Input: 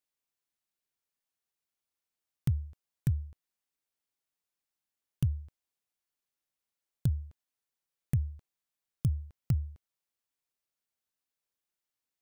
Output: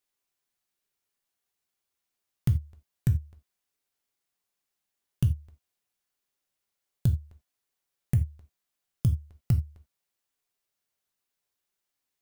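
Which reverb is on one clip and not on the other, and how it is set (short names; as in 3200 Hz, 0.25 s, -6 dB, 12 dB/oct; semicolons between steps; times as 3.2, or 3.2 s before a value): non-linear reverb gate 0.11 s falling, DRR 5.5 dB; gain +4 dB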